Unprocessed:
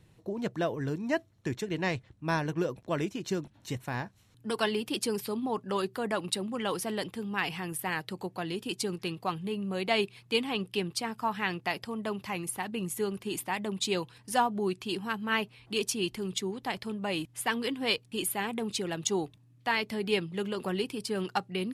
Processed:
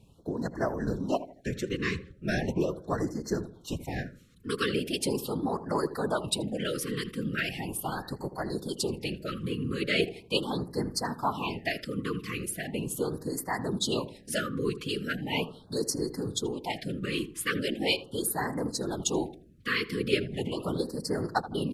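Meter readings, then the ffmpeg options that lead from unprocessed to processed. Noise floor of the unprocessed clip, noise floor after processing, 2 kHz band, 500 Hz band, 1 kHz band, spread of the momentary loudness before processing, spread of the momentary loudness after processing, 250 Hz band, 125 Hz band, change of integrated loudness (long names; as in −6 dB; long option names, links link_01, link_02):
−61 dBFS, −54 dBFS, 0.0 dB, +1.0 dB, −2.0 dB, 6 LU, 6 LU, +1.5 dB, +3.0 dB, +1.0 dB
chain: -filter_complex "[0:a]afftfilt=real='hypot(re,im)*cos(2*PI*random(0))':imag='hypot(re,im)*sin(2*PI*random(1))':win_size=512:overlap=0.75,asplit=2[link_01][link_02];[link_02]adelay=80,lowpass=frequency=1200:poles=1,volume=-12.5dB,asplit=2[link_03][link_04];[link_04]adelay=80,lowpass=frequency=1200:poles=1,volume=0.38,asplit=2[link_05][link_06];[link_06]adelay=80,lowpass=frequency=1200:poles=1,volume=0.38,asplit=2[link_07][link_08];[link_08]adelay=80,lowpass=frequency=1200:poles=1,volume=0.38[link_09];[link_01][link_03][link_05][link_07][link_09]amix=inputs=5:normalize=0,afftfilt=real='re*(1-between(b*sr/1024,720*pow(3000/720,0.5+0.5*sin(2*PI*0.39*pts/sr))/1.41,720*pow(3000/720,0.5+0.5*sin(2*PI*0.39*pts/sr))*1.41))':imag='im*(1-between(b*sr/1024,720*pow(3000/720,0.5+0.5*sin(2*PI*0.39*pts/sr))/1.41,720*pow(3000/720,0.5+0.5*sin(2*PI*0.39*pts/sr))*1.41))':win_size=1024:overlap=0.75,volume=7.5dB"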